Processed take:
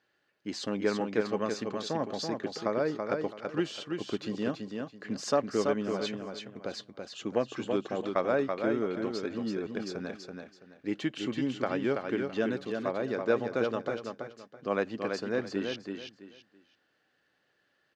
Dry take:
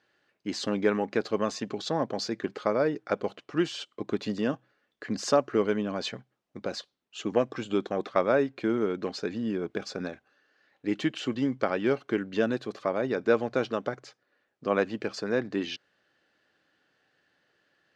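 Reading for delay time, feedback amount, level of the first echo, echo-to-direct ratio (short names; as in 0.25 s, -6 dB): 0.331 s, 26%, -5.0 dB, -4.5 dB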